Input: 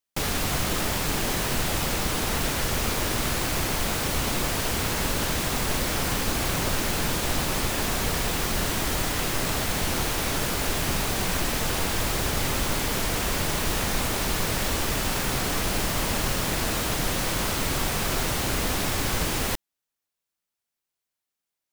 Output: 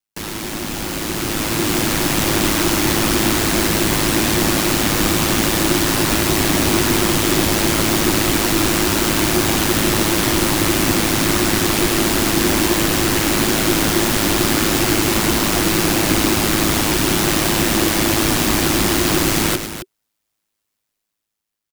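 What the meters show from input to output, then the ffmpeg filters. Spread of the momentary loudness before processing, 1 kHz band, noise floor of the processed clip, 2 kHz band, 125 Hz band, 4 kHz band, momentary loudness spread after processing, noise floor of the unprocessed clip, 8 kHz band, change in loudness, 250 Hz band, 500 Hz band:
0 LU, +8.0 dB, -77 dBFS, +8.5 dB, +7.5 dB, +9.0 dB, 2 LU, under -85 dBFS, +9.0 dB, +9.5 dB, +14.0 dB, +10.5 dB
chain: -filter_complex "[0:a]aeval=exprs='val(0)*sin(2*PI*53*n/s)':c=same,highpass=45,asplit=2[s0][s1];[s1]aecho=0:1:107.9|268.2:0.282|0.282[s2];[s0][s2]amix=inputs=2:normalize=0,afreqshift=-410,dynaudnorm=f=580:g=5:m=3.16,volume=1.33"

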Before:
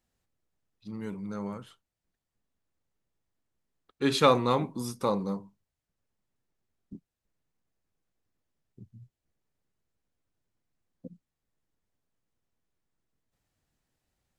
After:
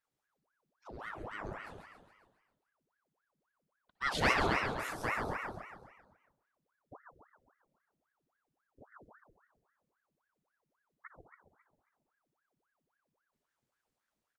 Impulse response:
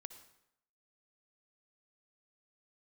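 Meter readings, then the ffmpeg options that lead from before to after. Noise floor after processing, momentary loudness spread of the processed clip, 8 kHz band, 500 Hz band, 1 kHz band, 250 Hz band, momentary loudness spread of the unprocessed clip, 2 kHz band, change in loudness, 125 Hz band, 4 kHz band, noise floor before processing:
under -85 dBFS, 21 LU, -6.0 dB, -11.0 dB, -5.0 dB, -11.5 dB, 17 LU, +6.0 dB, -6.0 dB, -8.0 dB, -6.5 dB, under -85 dBFS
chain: -filter_complex "[0:a]asplit=8[s0][s1][s2][s3][s4][s5][s6][s7];[s1]adelay=136,afreqshift=33,volume=0.562[s8];[s2]adelay=272,afreqshift=66,volume=0.302[s9];[s3]adelay=408,afreqshift=99,volume=0.164[s10];[s4]adelay=544,afreqshift=132,volume=0.0881[s11];[s5]adelay=680,afreqshift=165,volume=0.0479[s12];[s6]adelay=816,afreqshift=198,volume=0.0257[s13];[s7]adelay=952,afreqshift=231,volume=0.014[s14];[s0][s8][s9][s10][s11][s12][s13][s14]amix=inputs=8:normalize=0[s15];[1:a]atrim=start_sample=2205[s16];[s15][s16]afir=irnorm=-1:irlink=0,aeval=exprs='val(0)*sin(2*PI*910*n/s+910*0.85/3.7*sin(2*PI*3.7*n/s))':c=same"

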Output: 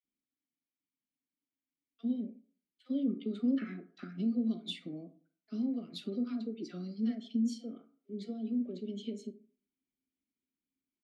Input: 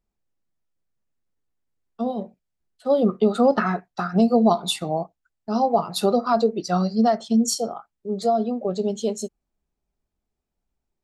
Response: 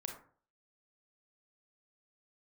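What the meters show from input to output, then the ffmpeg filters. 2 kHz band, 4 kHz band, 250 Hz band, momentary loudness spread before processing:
-20.0 dB, -15.5 dB, -10.5 dB, 13 LU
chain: -filter_complex "[0:a]acompressor=threshold=0.0501:ratio=2,asplit=3[s0][s1][s2];[s0]bandpass=f=270:t=q:w=8,volume=1[s3];[s1]bandpass=f=2290:t=q:w=8,volume=0.501[s4];[s2]bandpass=f=3010:t=q:w=8,volume=0.355[s5];[s3][s4][s5]amix=inputs=3:normalize=0,acrossover=split=930[s6][s7];[s6]adelay=40[s8];[s8][s7]amix=inputs=2:normalize=0,asplit=2[s9][s10];[1:a]atrim=start_sample=2205[s11];[s10][s11]afir=irnorm=-1:irlink=0,volume=0.668[s12];[s9][s12]amix=inputs=2:normalize=0"

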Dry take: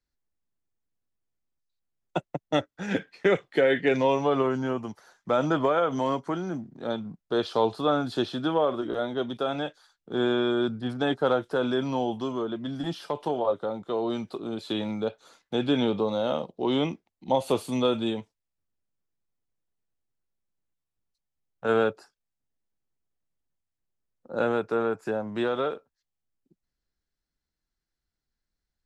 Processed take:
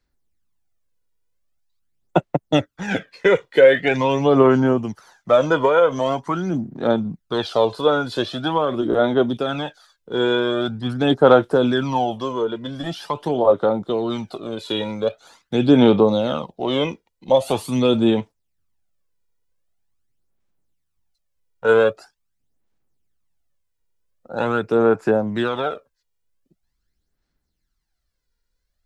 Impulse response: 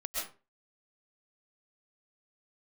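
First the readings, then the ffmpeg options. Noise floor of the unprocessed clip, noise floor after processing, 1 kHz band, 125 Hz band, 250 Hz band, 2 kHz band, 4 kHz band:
under -85 dBFS, -75 dBFS, +7.0 dB, +9.0 dB, +8.0 dB, +8.0 dB, +7.0 dB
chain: -af "aphaser=in_gain=1:out_gain=1:delay=2.1:decay=0.55:speed=0.44:type=sinusoidal,volume=1.88"

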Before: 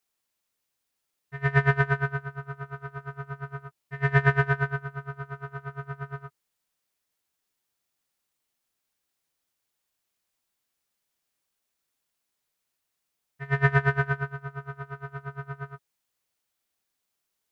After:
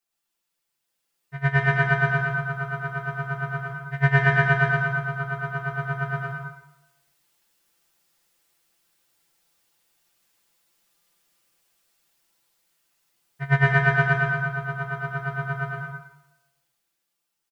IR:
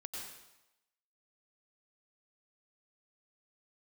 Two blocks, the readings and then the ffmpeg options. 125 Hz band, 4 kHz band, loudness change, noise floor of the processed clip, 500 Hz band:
+4.0 dB, +7.0 dB, +4.0 dB, -80 dBFS, +3.5 dB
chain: -filter_complex "[0:a]aecho=1:1:5.9:0.84,alimiter=limit=0.251:level=0:latency=1:release=363,dynaudnorm=f=130:g=21:m=3.76[s0];[1:a]atrim=start_sample=2205[s1];[s0][s1]afir=irnorm=-1:irlink=0"

